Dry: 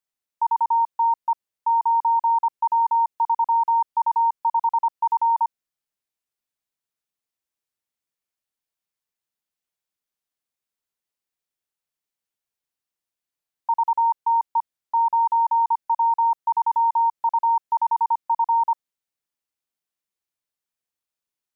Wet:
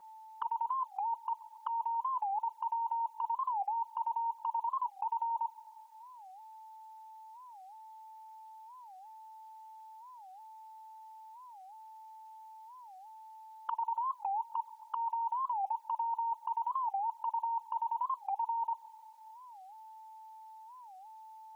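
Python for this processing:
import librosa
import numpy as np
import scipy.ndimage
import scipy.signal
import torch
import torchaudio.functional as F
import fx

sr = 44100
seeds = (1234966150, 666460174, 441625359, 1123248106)

y = scipy.signal.sosfilt(scipy.signal.butter(2, 610.0, 'highpass', fs=sr, output='sos'), x)
y = fx.notch(y, sr, hz=1000.0, q=11.0)
y = fx.over_compress(y, sr, threshold_db=-33.0, ratio=-1.0)
y = y + 10.0 ** (-53.0 / 20.0) * np.sin(2.0 * np.pi * 880.0 * np.arange(len(y)) / sr)
y = fx.env_flanger(y, sr, rest_ms=5.7, full_db=-31.5)
y = fx.echo_wet_lowpass(y, sr, ms=138, feedback_pct=68, hz=1000.0, wet_db=-18.5)
y = fx.record_warp(y, sr, rpm=45.0, depth_cents=250.0)
y = F.gain(torch.from_numpy(y), 4.0).numpy()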